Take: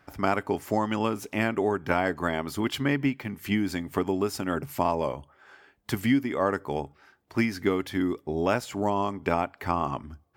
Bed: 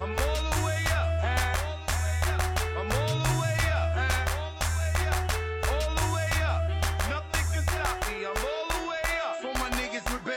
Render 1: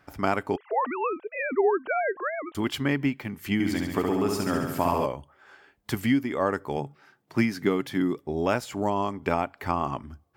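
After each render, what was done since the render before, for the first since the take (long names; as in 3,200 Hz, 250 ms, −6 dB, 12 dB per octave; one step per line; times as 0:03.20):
0:00.56–0:02.55: three sine waves on the formant tracks
0:03.53–0:05.06: flutter between parallel walls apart 11.8 metres, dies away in 1.1 s
0:06.77–0:08.19: low shelf with overshoot 100 Hz −9 dB, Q 3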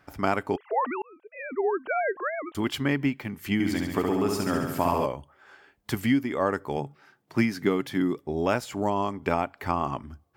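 0:01.02–0:02.00: fade in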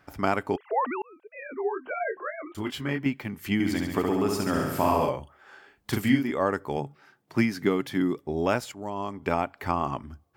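0:01.40–0:03.06: micro pitch shift up and down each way 16 cents
0:04.53–0:06.31: double-tracking delay 38 ms −3 dB
0:08.72–0:09.39: fade in, from −14 dB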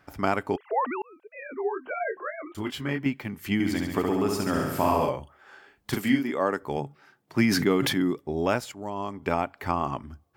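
0:05.94–0:06.63: high-pass filter 170 Hz
0:07.38–0:08.11: level that may fall only so fast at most 31 dB per second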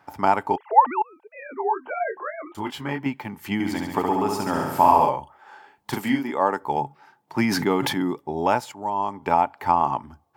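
high-pass filter 97 Hz
parametric band 880 Hz +15 dB 0.42 octaves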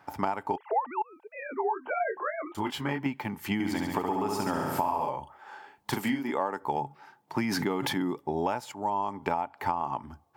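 downward compressor 10 to 1, threshold −25 dBFS, peak gain reduction 17 dB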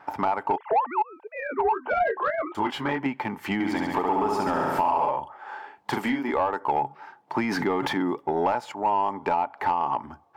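tape wow and flutter 22 cents
mid-hump overdrive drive 18 dB, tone 1,100 Hz, clips at −10 dBFS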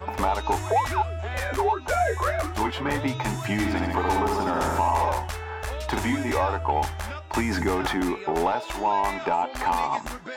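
mix in bed −4.5 dB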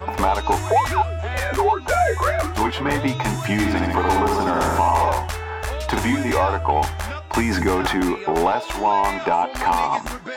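level +5 dB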